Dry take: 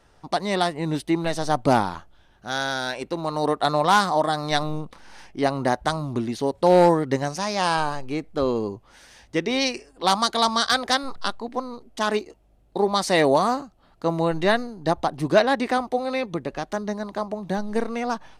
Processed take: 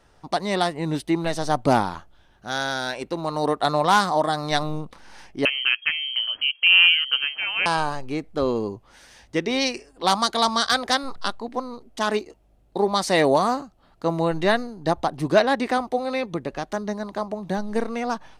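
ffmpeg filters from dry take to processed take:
-filter_complex "[0:a]asettb=1/sr,asplit=3[s0][s1][s2];[s0]atrim=end=5.454[s3];[s1]atrim=start=5.45:end=7.66,asetpts=PTS-STARTPTS,afade=t=in:d=0.004:c=qsin,afade=t=out:st=2.206:d=0.004:c=qsin,lowpass=f=2800:t=q:w=0.5098,lowpass=f=2800:t=q:w=0.6013,lowpass=f=2800:t=q:w=0.9,lowpass=f=2800:t=q:w=2.563,afreqshift=-3300[s4];[s2]atrim=start=7.656[s5];[s3][s4]acrossfade=d=0.004:c1=hsin:c2=qsin[s6];[s6][s5]acrossfade=d=0.004:c1=qsin:c2=hsin"

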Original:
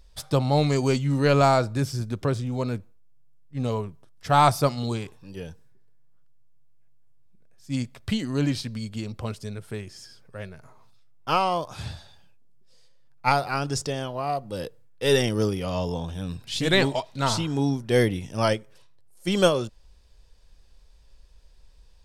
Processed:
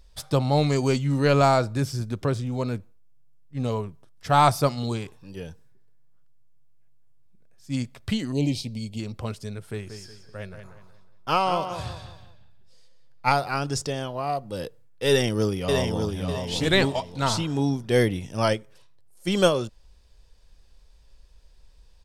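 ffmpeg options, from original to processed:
-filter_complex "[0:a]asettb=1/sr,asplit=3[s0][s1][s2];[s0]atrim=end=8.324[s3];[s1]atrim=start=8.32:end=9,asetpts=PTS-STARTPTS,afade=t=in:d=0.004:c=qsin,afade=t=out:st=0.676:d=0.004:c=qsin,asuperstop=centerf=1400:order=8:qfactor=1.1[s4];[s2]atrim=start=8.996[s5];[s3][s4]acrossfade=d=0.004:c1=hsin:c2=qsin[s6];[s6][s5]acrossfade=d=0.004:c1=qsin:c2=hsin,asettb=1/sr,asplit=3[s7][s8][s9];[s7]atrim=end=9.554[s10];[s8]atrim=start=9.55:end=13.28,asetpts=PTS-STARTPTS,afade=t=in:d=0.004:c=qsin,afade=t=out:st=3.726:d=0.004:c=qsin,asplit=2[s11][s12];[s12]adelay=183,lowpass=f=4500:p=1,volume=0.376,asplit=2[s13][s14];[s14]adelay=183,lowpass=f=4500:p=1,volume=0.37,asplit=2[s15][s16];[s16]adelay=183,lowpass=f=4500:p=1,volume=0.37,asplit=2[s17][s18];[s18]adelay=183,lowpass=f=4500:p=1,volume=0.37[s19];[s11][s13][s15][s17][s19]amix=inputs=5:normalize=0,atrim=end_sample=164493[s20];[s9]atrim=start=13.276[s21];[s10][s20]acrossfade=d=0.004:c1=hsin:c2=qsin[s22];[s22][s21]acrossfade=d=0.004:c1=qsin:c2=hsin,asplit=2[s23][s24];[s24]afade=t=in:st=15.08:d=0.01,afade=t=out:st=16.25:d=0.01,aecho=0:1:600|1200|1800|2400:0.595662|0.178699|0.0536096|0.0160829[s25];[s23][s25]amix=inputs=2:normalize=0"

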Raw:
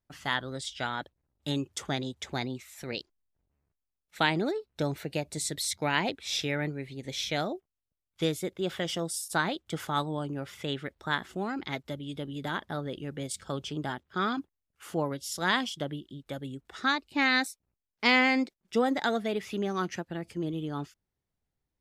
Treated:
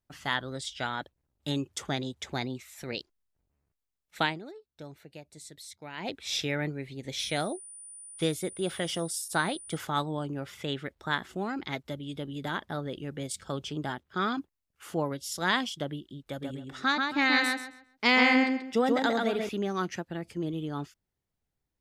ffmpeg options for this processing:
-filter_complex "[0:a]asettb=1/sr,asplit=3[s0][s1][s2];[s0]atrim=end=7.194[s3];[s1]atrim=start=7.19:end=9.77,asetpts=PTS-STARTPTS,afade=t=in:d=0.004:c=qsin,afade=t=out:st=2.576:d=0.004:c=qsin,aeval=exprs='val(0)+0.00631*sin(2*PI*9400*n/s)':c=same[s4];[s2]atrim=start=9.766[s5];[s3][s4]acrossfade=d=0.004:c1=hsin:c2=qsin[s6];[s6][s5]acrossfade=d=0.004:c1=qsin:c2=hsin,asettb=1/sr,asplit=3[s7][s8][s9];[s7]atrim=end=16.294[s10];[s8]atrim=start=16.29:end=19.49,asetpts=PTS-STARTPTS,afade=t=in:d=0.004:c=qsin,afade=t=out:st=3.196:d=0.004:c=qsin,asplit=2[s11][s12];[s12]adelay=134,lowpass=f=4700:p=1,volume=0.708,asplit=2[s13][s14];[s14]adelay=134,lowpass=f=4700:p=1,volume=0.26,asplit=2[s15][s16];[s16]adelay=134,lowpass=f=4700:p=1,volume=0.26,asplit=2[s17][s18];[s18]adelay=134,lowpass=f=4700:p=1,volume=0.26[s19];[s11][s13][s15][s17][s19]amix=inputs=5:normalize=0,atrim=end_sample=141120[s20];[s9]atrim=start=19.486[s21];[s10][s20]acrossfade=d=0.004:c1=hsin:c2=qsin[s22];[s22][s21]acrossfade=d=0.004:c1=qsin:c2=hsin,asplit=3[s23][s24][s25];[s23]atrim=end=4.39,asetpts=PTS-STARTPTS,afade=t=out:st=4.2:d=0.19:silence=0.188365[s26];[s24]atrim=start=4.39:end=5.97,asetpts=PTS-STARTPTS,volume=0.188[s27];[s25]atrim=start=5.97,asetpts=PTS-STARTPTS,afade=t=in:d=0.19:silence=0.188365[s28];[s26][s27][s28]concat=n=3:v=0:a=1"

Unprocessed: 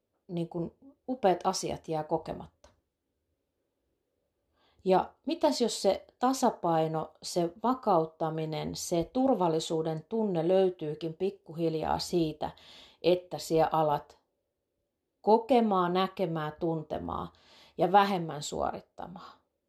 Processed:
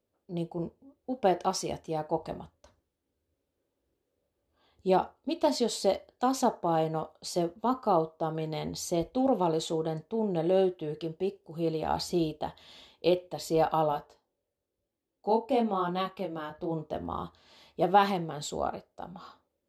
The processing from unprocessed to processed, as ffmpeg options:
-filter_complex "[0:a]asplit=3[s0][s1][s2];[s0]afade=t=out:st=13.91:d=0.02[s3];[s1]flanger=delay=17.5:depth=5.6:speed=1,afade=t=in:st=13.91:d=0.02,afade=t=out:st=16.7:d=0.02[s4];[s2]afade=t=in:st=16.7:d=0.02[s5];[s3][s4][s5]amix=inputs=3:normalize=0"

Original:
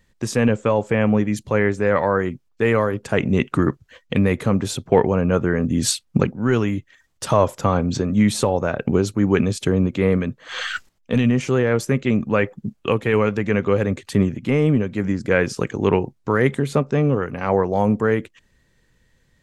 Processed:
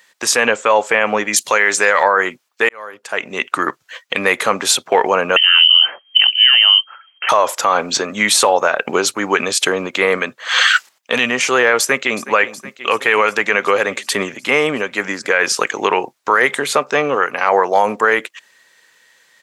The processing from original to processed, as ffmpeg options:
-filter_complex "[0:a]asettb=1/sr,asplit=3[s0][s1][s2];[s0]atrim=end=1.334[s3];[s1]atrim=start=1.33:end=2.03,asetpts=PTS-STARTPTS,afade=t=in:d=0.004:c=qsin,afade=t=out:st=0.696:d=0.004:c=qsin,equalizer=f=10000:t=o:w=2.7:g=13.5[s4];[s2]atrim=start=2.026[s5];[s3][s4]acrossfade=d=0.004:c1=hsin:c2=qsin[s6];[s6][s5]acrossfade=d=0.004:c1=qsin:c2=hsin,asettb=1/sr,asplit=3[s7][s8][s9];[s7]atrim=end=5.364[s10];[s8]atrim=start=5.36:end=7.29,asetpts=PTS-STARTPTS,afade=t=in:d=0.004:c=qsin,afade=t=out:st=1.926:d=0.004:c=qsin,lowpass=f=2700:t=q:w=0.5098,lowpass=f=2700:t=q:w=0.6013,lowpass=f=2700:t=q:w=0.9,lowpass=f=2700:t=q:w=2.563,afreqshift=-3200[s11];[s9]atrim=start=7.286[s12];[s10][s11]acrossfade=d=0.004:c1=hsin:c2=qsin[s13];[s13][s12]acrossfade=d=0.004:c1=qsin:c2=hsin,asplit=2[s14][s15];[s15]afade=t=in:st=11.79:d=0.01,afade=t=out:st=12.25:d=0.01,aecho=0:1:370|740|1110|1480|1850|2220|2590|2960|3330|3700:0.16788|0.12591|0.0944327|0.0708245|0.0531184|0.0398388|0.0298791|0.0224093|0.016807|0.0126052[s16];[s14][s16]amix=inputs=2:normalize=0,asplit=2[s17][s18];[s17]atrim=end=2.69,asetpts=PTS-STARTPTS,afade=t=out:st=2.686:d=0.004:c=hsin[s19];[s18]atrim=start=2.69,asetpts=PTS-STARTPTS,afade=t=in:d=1.44[s20];[s19][s20]concat=n=2:v=0:a=1,highpass=870,alimiter=level_in=6.68:limit=0.891:release=50:level=0:latency=1,volume=0.891"

